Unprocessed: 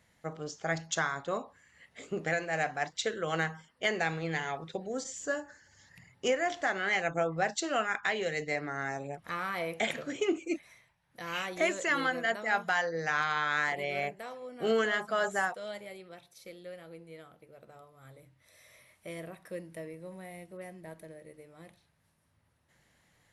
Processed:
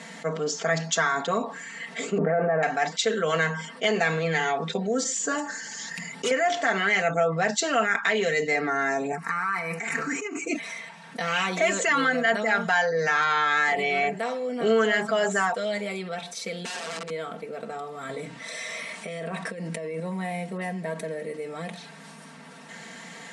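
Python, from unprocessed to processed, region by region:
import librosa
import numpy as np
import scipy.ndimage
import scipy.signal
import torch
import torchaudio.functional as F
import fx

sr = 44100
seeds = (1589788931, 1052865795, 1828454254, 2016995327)

y = fx.chain(x, sr, fx.lowpass(hz=1300.0, slope=24),
    fx.env_flatten(amount_pct=100), at=(2.18, 2.63))
y = fx.chain(y, sr, fx.clip_hard(threshold_db=-34.0),
    fx.high_shelf(hz=4900.0, db=9.0), at=(5.38, 6.31))
y = fx.chain(y, sr, fx.peak_eq(hz=220.0, db=-9.5, octaves=0.67),
    fx.over_compress(threshold_db=-39.0, ratio=-1.0),
    fx.fixed_phaser(hz=1400.0, stages=4), at=(9.12, 10.45))
y = fx.chain(y, sr, fx.bandpass_edges(low_hz=260.0, high_hz=5900.0),
    fx.overflow_wrap(gain_db=47.0), at=(16.65, 17.1))
y = fx.chain(y, sr, fx.lowpass(hz=10000.0, slope=24),
    fx.over_compress(threshold_db=-49.0, ratio=-1.0), at=(18.09, 20.0))
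y = scipy.signal.sosfilt(scipy.signal.ellip(3, 1.0, 40, [170.0, 8400.0], 'bandpass', fs=sr, output='sos'), y)
y = y + 0.84 * np.pad(y, (int(4.4 * sr / 1000.0), 0))[:len(y)]
y = fx.env_flatten(y, sr, amount_pct=50)
y = y * librosa.db_to_amplitude(1.5)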